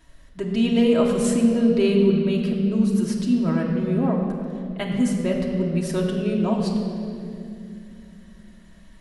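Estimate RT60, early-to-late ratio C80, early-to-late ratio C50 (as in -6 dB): 2.6 s, 4.0 dB, 3.0 dB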